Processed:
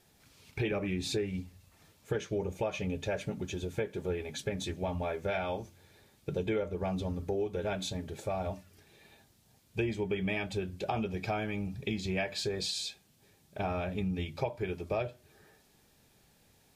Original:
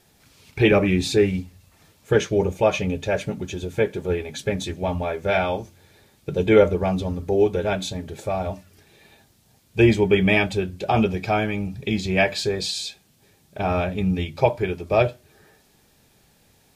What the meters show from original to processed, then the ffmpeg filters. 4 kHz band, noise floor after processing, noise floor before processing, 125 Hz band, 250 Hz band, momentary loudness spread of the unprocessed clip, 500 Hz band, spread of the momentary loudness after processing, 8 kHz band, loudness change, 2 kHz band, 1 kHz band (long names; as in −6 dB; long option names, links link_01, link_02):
−9.5 dB, −66 dBFS, −60 dBFS, −11.5 dB, −12.5 dB, 12 LU, −13.5 dB, 6 LU, −8.5 dB, −13.0 dB, −13.5 dB, −12.5 dB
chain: -af "acompressor=threshold=-23dB:ratio=6,volume=-6.5dB"